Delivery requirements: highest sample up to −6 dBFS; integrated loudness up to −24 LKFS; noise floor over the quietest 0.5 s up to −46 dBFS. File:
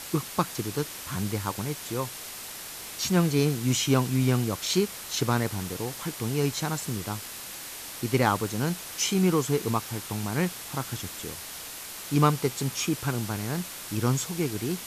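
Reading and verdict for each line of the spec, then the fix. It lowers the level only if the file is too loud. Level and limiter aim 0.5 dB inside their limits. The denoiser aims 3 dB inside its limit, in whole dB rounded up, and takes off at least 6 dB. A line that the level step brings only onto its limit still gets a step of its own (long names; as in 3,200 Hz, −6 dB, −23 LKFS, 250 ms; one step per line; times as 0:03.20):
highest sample −9.5 dBFS: in spec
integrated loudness −28.5 LKFS: in spec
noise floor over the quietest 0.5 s −40 dBFS: out of spec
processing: broadband denoise 9 dB, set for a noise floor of −40 dBFS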